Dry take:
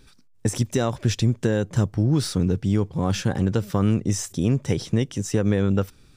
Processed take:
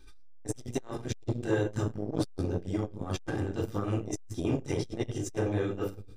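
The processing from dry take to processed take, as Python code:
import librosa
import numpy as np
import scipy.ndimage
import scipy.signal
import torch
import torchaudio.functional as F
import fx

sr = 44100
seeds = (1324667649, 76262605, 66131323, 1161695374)

y = x + 0.66 * np.pad(x, (int(2.5 * sr / 1000.0), 0))[:len(x)]
y = fx.room_shoebox(y, sr, seeds[0], volume_m3=680.0, walls='furnished', distance_m=2.6)
y = fx.transformer_sat(y, sr, knee_hz=380.0)
y = y * 10.0 ** (-8.5 / 20.0)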